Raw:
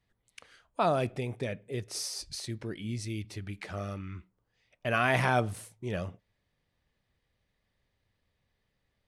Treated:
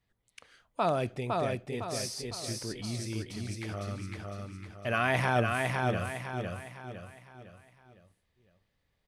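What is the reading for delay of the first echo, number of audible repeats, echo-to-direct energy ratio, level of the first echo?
0.507 s, 5, -2.0 dB, -3.0 dB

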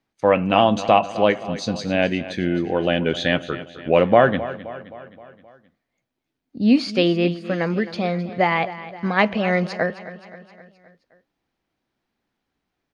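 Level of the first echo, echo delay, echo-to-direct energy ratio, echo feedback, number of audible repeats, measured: -15.0 dB, 0.262 s, -13.5 dB, 55%, 4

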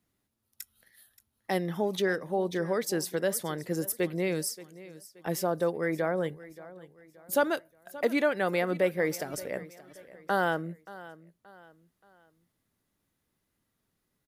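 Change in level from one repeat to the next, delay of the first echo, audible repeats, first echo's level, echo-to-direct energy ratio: -8.5 dB, 0.577 s, 3, -18.0 dB, -17.5 dB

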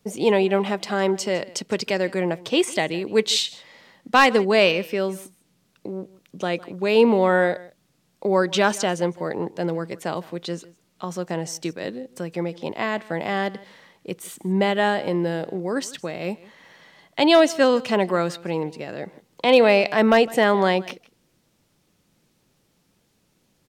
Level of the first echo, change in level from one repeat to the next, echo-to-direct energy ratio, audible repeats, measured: -21.0 dB, no steady repeat, -21.0 dB, 1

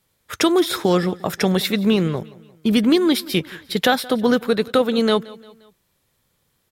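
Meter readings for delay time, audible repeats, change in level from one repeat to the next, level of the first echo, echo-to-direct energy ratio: 0.175 s, 3, -6.5 dB, -21.0 dB, -20.0 dB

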